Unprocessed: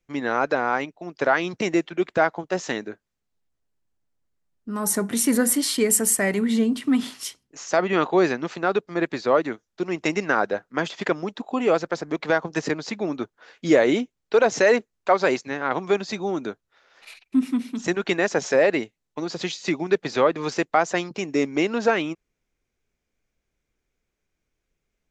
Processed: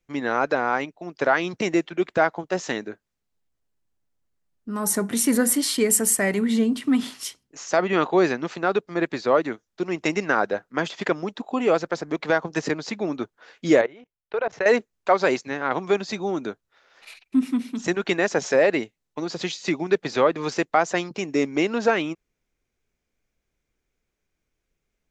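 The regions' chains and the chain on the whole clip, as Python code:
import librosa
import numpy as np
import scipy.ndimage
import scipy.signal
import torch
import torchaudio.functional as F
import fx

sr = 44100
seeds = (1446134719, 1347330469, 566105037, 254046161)

y = fx.chain(x, sr, fx.lowpass(hz=2400.0, slope=12),
    fx.peak_eq(hz=260.0, db=-13.5, octaves=0.8),
    fx.level_steps(step_db=23), at=(13.81, 14.66))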